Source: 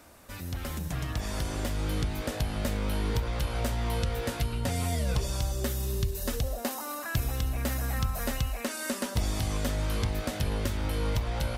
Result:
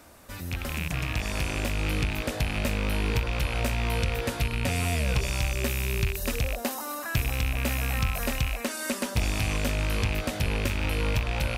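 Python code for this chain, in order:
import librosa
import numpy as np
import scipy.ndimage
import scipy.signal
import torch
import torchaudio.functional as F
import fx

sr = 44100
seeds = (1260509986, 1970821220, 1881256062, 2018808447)

y = fx.rattle_buzz(x, sr, strikes_db=-32.0, level_db=-22.0)
y = y * 10.0 ** (2.0 / 20.0)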